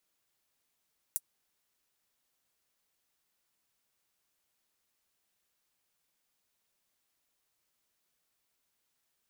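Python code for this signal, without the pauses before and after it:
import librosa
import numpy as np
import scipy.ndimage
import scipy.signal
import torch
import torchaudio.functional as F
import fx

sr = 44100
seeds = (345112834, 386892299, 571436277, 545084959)

y = fx.drum_hat(sr, length_s=0.24, from_hz=8800.0, decay_s=0.05)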